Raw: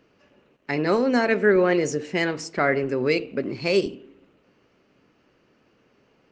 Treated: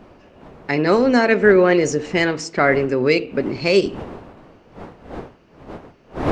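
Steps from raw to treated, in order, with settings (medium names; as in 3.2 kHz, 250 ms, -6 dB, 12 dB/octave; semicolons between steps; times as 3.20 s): wind noise 600 Hz -40 dBFS; trim +5.5 dB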